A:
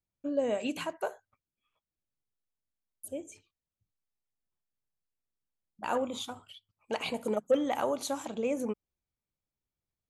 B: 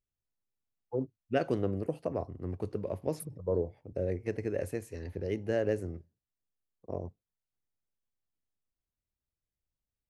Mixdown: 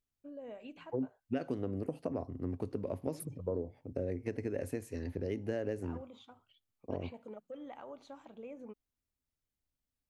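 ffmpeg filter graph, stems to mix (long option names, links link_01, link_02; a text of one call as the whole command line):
ffmpeg -i stem1.wav -i stem2.wav -filter_complex "[0:a]lowpass=3000,alimiter=limit=-23dB:level=0:latency=1:release=94,volume=-15dB[link_01];[1:a]equalizer=frequency=260:width=5.6:gain=9.5,volume=0dB[link_02];[link_01][link_02]amix=inputs=2:normalize=0,acompressor=threshold=-32dB:ratio=5" out.wav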